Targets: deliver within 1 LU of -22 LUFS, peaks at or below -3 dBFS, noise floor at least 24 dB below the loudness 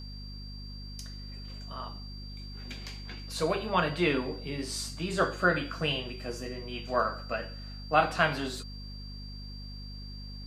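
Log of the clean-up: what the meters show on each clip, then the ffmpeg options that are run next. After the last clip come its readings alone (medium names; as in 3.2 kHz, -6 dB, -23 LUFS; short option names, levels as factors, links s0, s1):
hum 50 Hz; highest harmonic 250 Hz; hum level -40 dBFS; steady tone 4.7 kHz; tone level -47 dBFS; loudness -31.5 LUFS; peak level -8.5 dBFS; loudness target -22.0 LUFS
-> -af "bandreject=f=50:t=h:w=6,bandreject=f=100:t=h:w=6,bandreject=f=150:t=h:w=6,bandreject=f=200:t=h:w=6,bandreject=f=250:t=h:w=6"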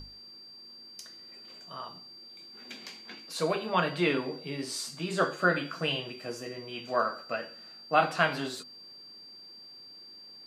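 hum not found; steady tone 4.7 kHz; tone level -47 dBFS
-> -af "bandreject=f=4700:w=30"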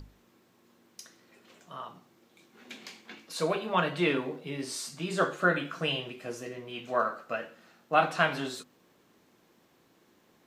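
steady tone not found; loudness -30.5 LUFS; peak level -9.0 dBFS; loudness target -22.0 LUFS
-> -af "volume=2.66,alimiter=limit=0.708:level=0:latency=1"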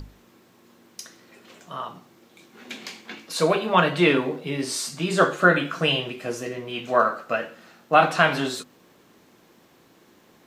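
loudness -22.5 LUFS; peak level -3.0 dBFS; noise floor -57 dBFS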